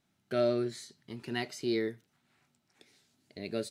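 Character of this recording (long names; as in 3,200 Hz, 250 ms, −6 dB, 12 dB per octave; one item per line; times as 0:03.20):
background noise floor −77 dBFS
spectral slope −4.5 dB per octave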